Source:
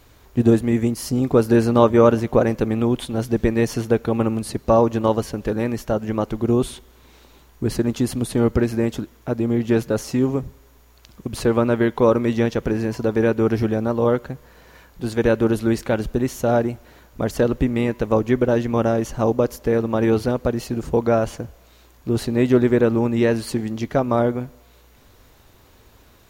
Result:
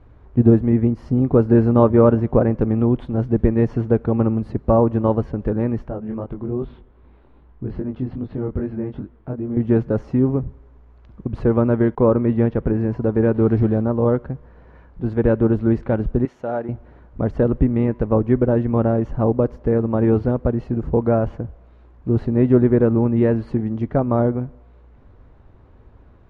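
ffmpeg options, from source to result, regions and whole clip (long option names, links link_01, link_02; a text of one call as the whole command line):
ffmpeg -i in.wav -filter_complex "[0:a]asettb=1/sr,asplit=3[link_01][link_02][link_03];[link_01]atrim=end=5.884[link_04];[link_02]atrim=start=5.88:end=9.57,asetpts=PTS-STARTPTS,afade=type=in:duration=0.004:curve=qsin,afade=type=out:start_time=3.686:duration=0.004:curve=qsin,lowpass=frequency=4400:width=0.5412,lowpass=frequency=4400:width=1.3066,acompressor=threshold=-27dB:ratio=1.5:attack=3.2:release=140:knee=1:detection=peak,flanger=delay=20:depth=3.5:speed=2.5[link_05];[link_03]atrim=start=9.566[link_06];[link_04][link_05]acrossfade=duration=0.004:curve1=hsin:curve2=qsin[link_07];[link_07][link_06]acrossfade=duration=0.004:curve1=qsin:curve2=hsin,asettb=1/sr,asplit=3[link_08][link_09][link_10];[link_08]atrim=end=11.954[link_11];[link_09]atrim=start=11.95:end=12.74,asetpts=PTS-STARTPTS,afade=type=in:duration=0.004:curve=qsin,afade=type=out:start_time=0.786:duration=0.004:curve=qsin,agate=range=-33dB:threshold=-40dB:ratio=3:release=100:detection=peak,lowpass=3900[link_12];[link_10]atrim=start=12.736[link_13];[link_11][link_12]acrossfade=duration=0.004:curve1=hsin:curve2=qsin[link_14];[link_14][link_13]acrossfade=duration=0.004:curve1=qsin:curve2=hsin,asettb=1/sr,asplit=3[link_15][link_16][link_17];[link_15]atrim=end=13.344[link_18];[link_16]atrim=start=13.34:end=13.82,asetpts=PTS-STARTPTS,afade=type=in:duration=0.004:curve=qsin,afade=type=out:start_time=0.476:duration=0.004:curve=qsin,aeval=exprs='val(0)+0.5*0.02*sgn(val(0))':channel_layout=same,equalizer=frequency=4000:width=2.9:gain=6[link_19];[link_17]atrim=start=13.816[link_20];[link_18][link_19]acrossfade=duration=0.004:curve1=hsin:curve2=qsin[link_21];[link_21][link_20]acrossfade=duration=0.004:curve1=qsin:curve2=hsin,asettb=1/sr,asplit=3[link_22][link_23][link_24];[link_22]atrim=end=16.254[link_25];[link_23]atrim=start=16.25:end=16.69,asetpts=PTS-STARTPTS,afade=type=in:duration=0.004:curve=qsin,afade=type=out:start_time=0.436:duration=0.004:curve=qsin,highpass=frequency=840:poles=1,bandreject=frequency=1100:width=13[link_26];[link_24]atrim=start=16.686[link_27];[link_25][link_26]acrossfade=duration=0.004:curve1=hsin:curve2=qsin[link_28];[link_28][link_27]acrossfade=duration=0.004:curve1=qsin:curve2=hsin,lowpass=1400,lowshelf=frequency=240:gain=8.5,volume=-2dB" out.wav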